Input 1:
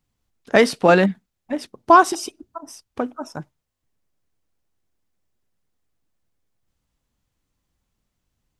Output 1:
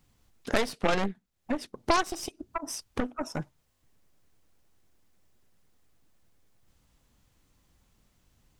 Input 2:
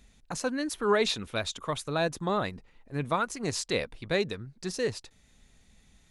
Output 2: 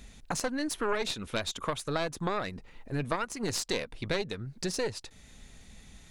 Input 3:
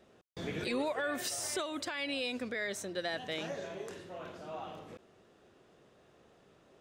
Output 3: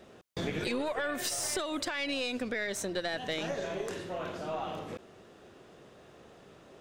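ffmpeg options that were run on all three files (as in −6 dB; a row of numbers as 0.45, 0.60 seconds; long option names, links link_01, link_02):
-af "aeval=exprs='0.891*(cos(1*acos(clip(val(0)/0.891,-1,1)))-cos(1*PI/2))+0.355*(cos(4*acos(clip(val(0)/0.891,-1,1)))-cos(4*PI/2))+0.447*(cos(6*acos(clip(val(0)/0.891,-1,1)))-cos(6*PI/2))':channel_layout=same,acompressor=threshold=-40dB:ratio=3,volume=8.5dB"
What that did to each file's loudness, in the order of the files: −14.0, −2.5, +3.0 LU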